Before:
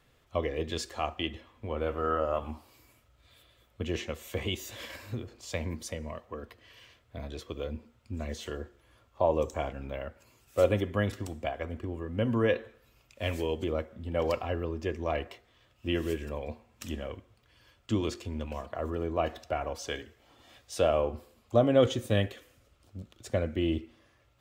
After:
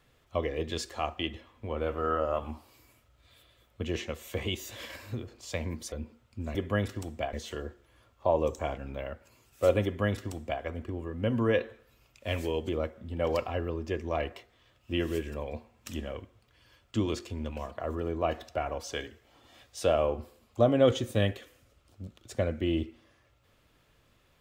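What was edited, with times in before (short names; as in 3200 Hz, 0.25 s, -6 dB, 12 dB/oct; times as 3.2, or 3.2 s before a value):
5.92–7.65 cut
10.79–11.57 copy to 8.28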